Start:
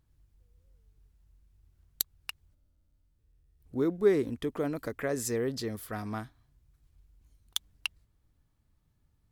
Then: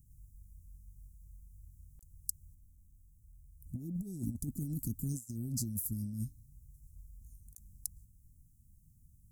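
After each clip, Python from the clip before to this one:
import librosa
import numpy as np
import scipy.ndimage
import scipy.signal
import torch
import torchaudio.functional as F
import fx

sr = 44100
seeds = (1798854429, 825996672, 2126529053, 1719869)

y = scipy.signal.sosfilt(scipy.signal.cheby2(4, 50, [500.0, 3200.0], 'bandstop', fs=sr, output='sos'), x)
y = fx.high_shelf(y, sr, hz=5200.0, db=7.0)
y = fx.over_compress(y, sr, threshold_db=-42.0, ratio=-0.5)
y = y * librosa.db_to_amplitude(4.0)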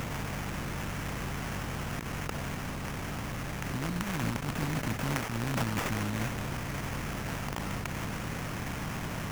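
y = fx.bin_compress(x, sr, power=0.2)
y = fx.sample_hold(y, sr, seeds[0], rate_hz=4100.0, jitter_pct=20)
y = fx.attack_slew(y, sr, db_per_s=100.0)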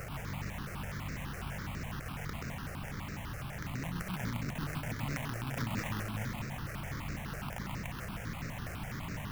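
y = x + 10.0 ** (-4.0 / 20.0) * np.pad(x, (int(131 * sr / 1000.0), 0))[:len(x)]
y = fx.phaser_held(y, sr, hz=12.0, low_hz=950.0, high_hz=3200.0)
y = y * librosa.db_to_amplitude(-4.0)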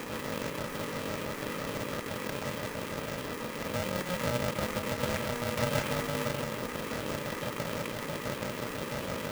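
y = fx.small_body(x, sr, hz=(240.0, 1600.0, 2800.0), ring_ms=45, db=10)
y = y * np.sign(np.sin(2.0 * np.pi * 360.0 * np.arange(len(y)) / sr))
y = y * librosa.db_to_amplitude(2.0)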